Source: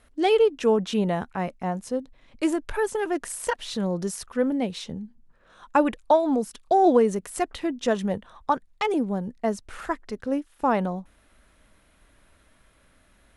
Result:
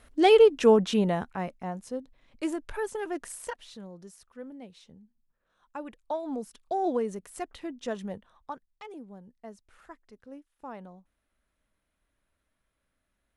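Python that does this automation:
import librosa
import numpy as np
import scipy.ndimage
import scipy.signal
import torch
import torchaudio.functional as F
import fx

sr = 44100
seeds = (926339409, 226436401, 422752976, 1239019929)

y = fx.gain(x, sr, db=fx.line((0.71, 2.0), (1.67, -7.0), (3.35, -7.0), (3.91, -19.0), (5.78, -19.0), (6.37, -10.0), (8.08, -10.0), (8.82, -19.5)))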